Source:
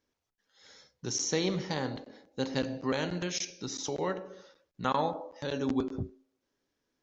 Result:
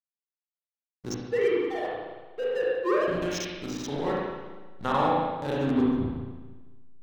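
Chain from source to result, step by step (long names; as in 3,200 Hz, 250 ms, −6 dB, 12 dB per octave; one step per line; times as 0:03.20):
0:01.14–0:03.08: three sine waves on the formant tracks
slack as between gear wheels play −33.5 dBFS
spring reverb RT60 1.3 s, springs 36/56 ms, chirp 35 ms, DRR −5 dB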